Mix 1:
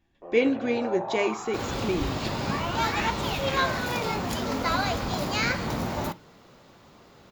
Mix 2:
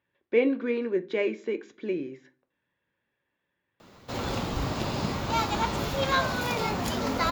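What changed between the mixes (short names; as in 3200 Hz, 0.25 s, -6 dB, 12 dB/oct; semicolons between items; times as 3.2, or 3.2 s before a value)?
speech: add BPF 220–2300 Hz; first sound: muted; second sound: entry +2.55 s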